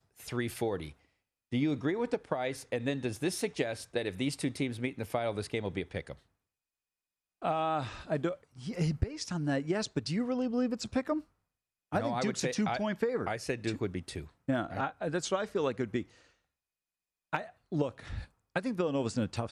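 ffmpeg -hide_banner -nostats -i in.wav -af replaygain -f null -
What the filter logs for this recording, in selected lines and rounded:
track_gain = +14.2 dB
track_peak = 0.130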